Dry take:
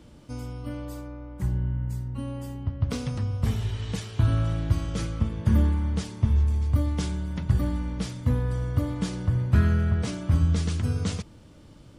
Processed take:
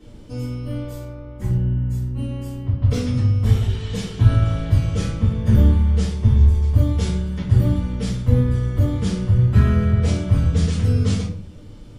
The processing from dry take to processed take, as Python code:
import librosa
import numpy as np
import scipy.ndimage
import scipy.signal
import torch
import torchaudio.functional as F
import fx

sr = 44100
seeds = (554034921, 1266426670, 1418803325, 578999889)

y = fx.room_shoebox(x, sr, seeds[0], volume_m3=45.0, walls='mixed', distance_m=2.1)
y = y * librosa.db_to_amplitude(-5.5)